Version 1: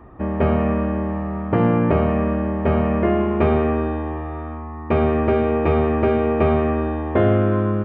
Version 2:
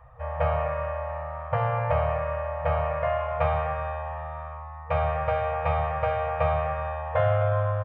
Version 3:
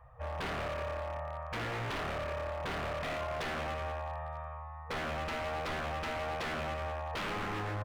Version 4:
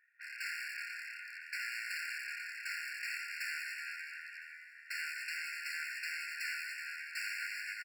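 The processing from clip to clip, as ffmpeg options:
ffmpeg -i in.wav -af "afftfilt=real='re*(1-between(b*sr/4096,160,470))':imag='im*(1-between(b*sr/4096,160,470))':win_size=4096:overlap=0.75,adynamicequalizer=threshold=0.0178:dfrequency=880:dqfactor=0.73:tfrequency=880:tqfactor=0.73:attack=5:release=100:ratio=0.375:range=2:mode=boostabove:tftype=bell,aecho=1:1:252:0.224,volume=-5.5dB" out.wav
ffmpeg -i in.wav -af "aeval=exprs='0.0501*(abs(mod(val(0)/0.0501+3,4)-2)-1)':channel_layout=same,volume=-5.5dB" out.wav
ffmpeg -i in.wav -af "aeval=exprs='0.0282*(cos(1*acos(clip(val(0)/0.0282,-1,1)))-cos(1*PI/2))+0.0112*(cos(4*acos(clip(val(0)/0.0282,-1,1)))-cos(4*PI/2))':channel_layout=same,aecho=1:1:505|1010|1515|2020:0.158|0.0713|0.0321|0.0144,afftfilt=real='re*eq(mod(floor(b*sr/1024/1400),2),1)':imag='im*eq(mod(floor(b*sr/1024/1400),2),1)':win_size=1024:overlap=0.75,volume=1dB" out.wav

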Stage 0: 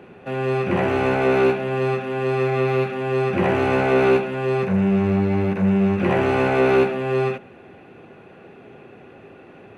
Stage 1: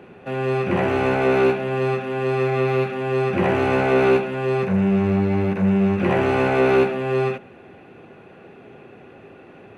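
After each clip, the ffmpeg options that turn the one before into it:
ffmpeg -i in.wav -af anull out.wav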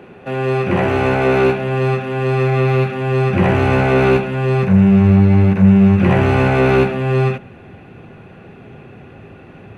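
ffmpeg -i in.wav -af "asubboost=boost=3.5:cutoff=180,volume=4.5dB" out.wav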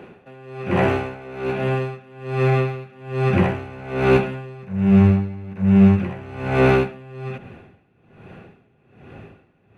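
ffmpeg -i in.wav -af "aeval=exprs='val(0)*pow(10,-22*(0.5-0.5*cos(2*PI*1.2*n/s))/20)':channel_layout=same,volume=-1dB" out.wav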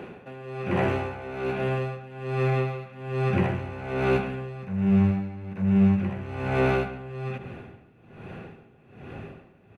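ffmpeg -i in.wav -filter_complex "[0:a]acompressor=threshold=-38dB:ratio=1.5,asplit=2[link_01][link_02];[link_02]adelay=139,lowpass=frequency=2200:poles=1,volume=-11dB,asplit=2[link_03][link_04];[link_04]adelay=139,lowpass=frequency=2200:poles=1,volume=0.35,asplit=2[link_05][link_06];[link_06]adelay=139,lowpass=frequency=2200:poles=1,volume=0.35,asplit=2[link_07][link_08];[link_08]adelay=139,lowpass=frequency=2200:poles=1,volume=0.35[link_09];[link_01][link_03][link_05][link_07][link_09]amix=inputs=5:normalize=0,volume=2dB" out.wav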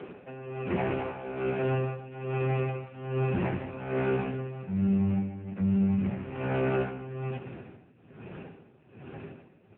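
ffmpeg -i in.wav -af "alimiter=limit=-18.5dB:level=0:latency=1:release=27" -ar 8000 -c:a libopencore_amrnb -b:a 5900 out.amr

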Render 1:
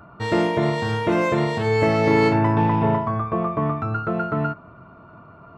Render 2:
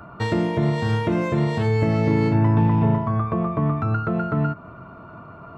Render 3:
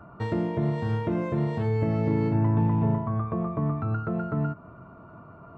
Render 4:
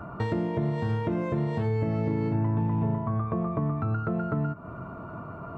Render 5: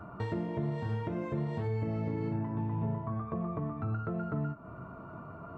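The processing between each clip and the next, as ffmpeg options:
ffmpeg -i in.wav -filter_complex "[0:a]acrossover=split=250[link_01][link_02];[link_02]acompressor=threshold=-30dB:ratio=6[link_03];[link_01][link_03]amix=inputs=2:normalize=0,volume=4.5dB" out.wav
ffmpeg -i in.wav -af "highshelf=frequency=2100:gain=-11.5,volume=-5dB" out.wav
ffmpeg -i in.wav -af "acompressor=threshold=-37dB:ratio=2.5,volume=8dB" out.wav
ffmpeg -i in.wav -af "flanger=delay=9.3:depth=7.6:regen=-53:speed=0.52:shape=triangular,volume=-2.5dB" out.wav

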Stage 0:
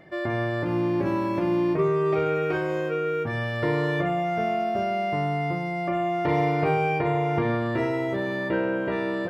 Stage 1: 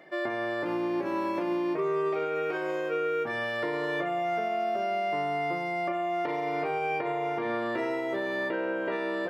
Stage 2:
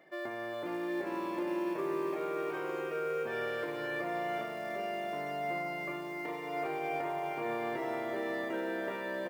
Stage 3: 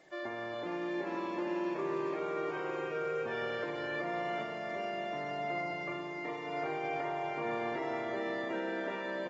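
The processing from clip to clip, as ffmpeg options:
ffmpeg -i in.wav -af "highpass=340,alimiter=limit=-21.5dB:level=0:latency=1:release=214" out.wav
ffmpeg -i in.wav -af "acrusher=bits=7:mode=log:mix=0:aa=0.000001,aecho=1:1:410|758.5|1055|1307|1521:0.631|0.398|0.251|0.158|0.1,volume=-8dB" out.wav
ffmpeg -i in.wav -af "acrusher=bits=10:mix=0:aa=0.000001,volume=-1dB" -ar 48000 -c:a aac -b:a 24k out.aac

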